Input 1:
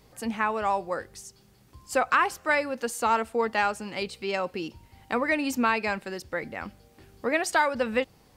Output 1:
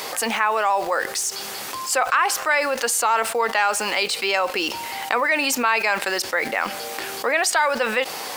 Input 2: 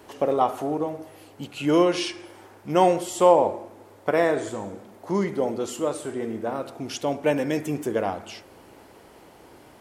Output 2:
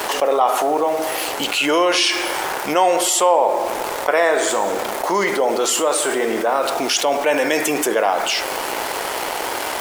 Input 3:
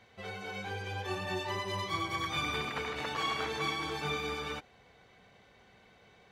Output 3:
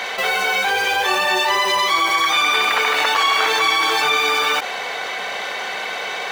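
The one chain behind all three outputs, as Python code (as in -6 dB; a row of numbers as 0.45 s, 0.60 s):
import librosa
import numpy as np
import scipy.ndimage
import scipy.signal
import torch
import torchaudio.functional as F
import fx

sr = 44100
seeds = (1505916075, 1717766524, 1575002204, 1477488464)

p1 = scipy.signal.sosfilt(scipy.signal.butter(2, 660.0, 'highpass', fs=sr, output='sos'), x)
p2 = fx.quant_dither(p1, sr, seeds[0], bits=8, dither='none')
p3 = p1 + (p2 * 10.0 ** (-6.0 / 20.0))
p4 = fx.env_flatten(p3, sr, amount_pct=70)
y = p4 * 10.0 ** (-3 / 20.0) / np.max(np.abs(p4))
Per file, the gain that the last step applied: -1.0 dB, 0.0 dB, +12.5 dB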